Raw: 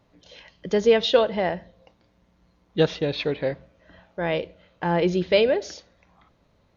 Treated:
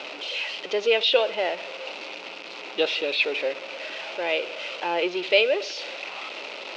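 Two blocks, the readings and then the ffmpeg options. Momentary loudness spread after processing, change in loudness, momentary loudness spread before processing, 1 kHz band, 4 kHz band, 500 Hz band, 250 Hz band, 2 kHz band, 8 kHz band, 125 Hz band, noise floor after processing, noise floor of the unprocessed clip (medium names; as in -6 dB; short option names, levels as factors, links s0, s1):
14 LU, -2.5 dB, 19 LU, -1.0 dB, +5.5 dB, -2.5 dB, -9.0 dB, +6.0 dB, no reading, under -25 dB, -39 dBFS, -64 dBFS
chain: -af "aeval=exprs='val(0)+0.5*0.0473*sgn(val(0))':c=same,highpass=f=400:w=0.5412,highpass=f=400:w=1.3066,equalizer=f=460:t=q:w=4:g=-4,equalizer=f=720:t=q:w=4:g=-4,equalizer=f=1100:t=q:w=4:g=-6,equalizer=f=1700:t=q:w=4:g=-8,equalizer=f=2600:t=q:w=4:g=10,lowpass=f=4800:w=0.5412,lowpass=f=4800:w=1.3066"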